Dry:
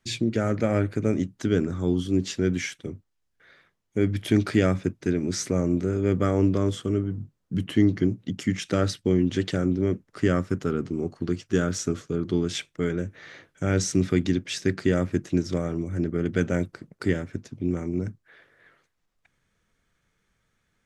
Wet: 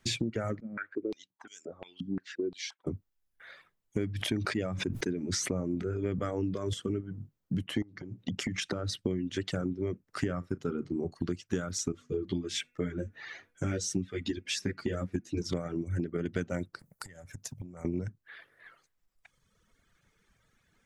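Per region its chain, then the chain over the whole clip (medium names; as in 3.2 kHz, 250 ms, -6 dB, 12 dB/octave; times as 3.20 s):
0.60–2.87 s: bass shelf 450 Hz -6 dB + band-stop 1.2 kHz, Q 22 + step-sequenced band-pass 5.7 Hz 210–6800 Hz
4.06–6.74 s: treble shelf 8.7 kHz -5 dB + decay stretcher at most 36 dB/s
7.82–9.05 s: compression 12:1, threshold -28 dBFS + treble shelf 8.1 kHz -7.5 dB
10.25–11.12 s: treble shelf 3.4 kHz -8 dB + doubling 35 ms -11.5 dB
11.92–15.42 s: de-hum 243.9 Hz, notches 11 + dynamic bell 970 Hz, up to -5 dB, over -42 dBFS, Q 1.3 + three-phase chorus
16.79–17.85 s: compression 8:1, threshold -39 dBFS + FFT filter 100 Hz 0 dB, 190 Hz -4 dB, 340 Hz -12 dB, 590 Hz 0 dB, 1.1 kHz -1 dB, 3.3 kHz -5 dB, 10 kHz +12 dB
whole clip: reverb removal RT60 1.6 s; compression 6:1, threshold -35 dBFS; trim +5.5 dB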